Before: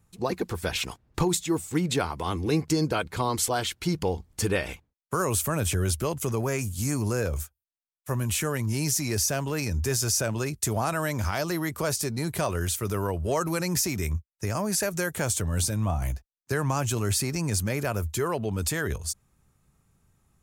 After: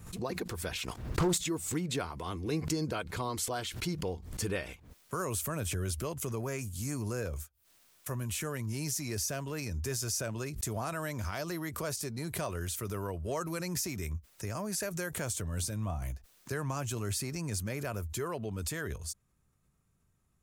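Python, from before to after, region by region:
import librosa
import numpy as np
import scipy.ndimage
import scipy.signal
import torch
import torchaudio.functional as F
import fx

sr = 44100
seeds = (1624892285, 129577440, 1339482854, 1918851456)

y = fx.chain(x, sr, fx.leveller(passes=2),
    fx.doppler_dist(depth_ms=0.3), at=(0.88, 1.38))
y = fx.notch(y, sr, hz=830.0, q=12.0)
y = fx.pre_swell(y, sr, db_per_s=75.0)
y = F.gain(torch.from_numpy(y), -8.5).numpy()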